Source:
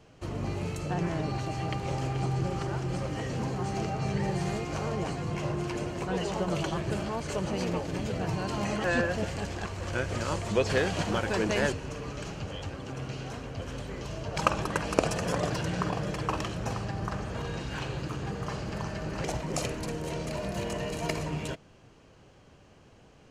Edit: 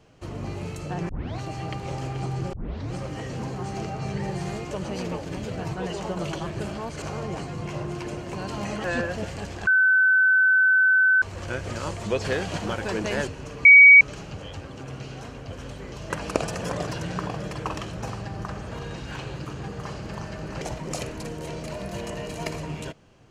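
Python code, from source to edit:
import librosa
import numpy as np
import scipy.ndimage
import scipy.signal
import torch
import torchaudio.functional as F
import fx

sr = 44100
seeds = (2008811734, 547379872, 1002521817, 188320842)

y = fx.edit(x, sr, fx.tape_start(start_s=1.09, length_s=0.29),
    fx.tape_start(start_s=2.53, length_s=0.4),
    fx.swap(start_s=4.71, length_s=1.33, other_s=7.33, other_length_s=1.02),
    fx.insert_tone(at_s=9.67, length_s=1.55, hz=1520.0, db=-15.0),
    fx.insert_tone(at_s=12.1, length_s=0.36, hz=2260.0, db=-6.5),
    fx.cut(start_s=14.19, length_s=0.54), tone=tone)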